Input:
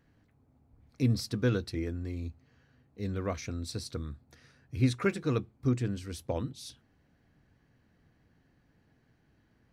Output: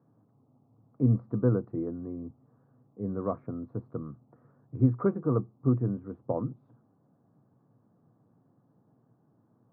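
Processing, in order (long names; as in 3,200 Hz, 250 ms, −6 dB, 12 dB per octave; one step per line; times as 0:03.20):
Chebyshev band-pass filter 110–1,200 Hz, order 4
level +3.5 dB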